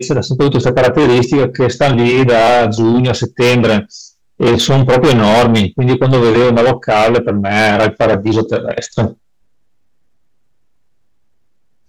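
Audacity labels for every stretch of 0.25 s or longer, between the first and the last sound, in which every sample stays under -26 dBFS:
4.080000	4.400000	silence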